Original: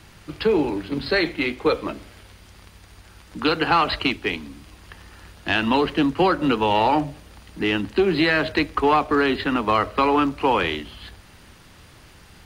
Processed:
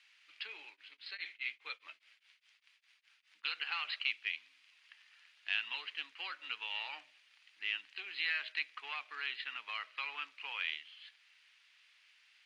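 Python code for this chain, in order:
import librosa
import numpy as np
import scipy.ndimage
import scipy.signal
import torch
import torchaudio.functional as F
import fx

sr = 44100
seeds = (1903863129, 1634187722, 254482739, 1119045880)

y = fx.ladder_bandpass(x, sr, hz=2900.0, resonance_pct=40)
y = fx.tremolo_abs(y, sr, hz=4.9, at=(0.67, 3.44))
y = y * librosa.db_to_amplitude(-2.5)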